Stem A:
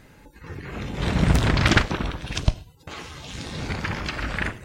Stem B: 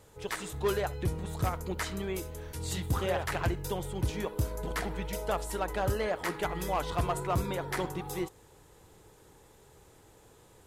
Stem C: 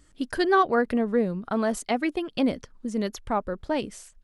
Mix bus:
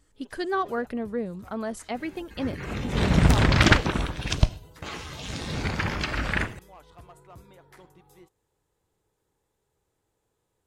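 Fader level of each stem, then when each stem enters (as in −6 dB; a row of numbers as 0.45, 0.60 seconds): +0.5, −19.0, −6.5 decibels; 1.95, 0.00, 0.00 seconds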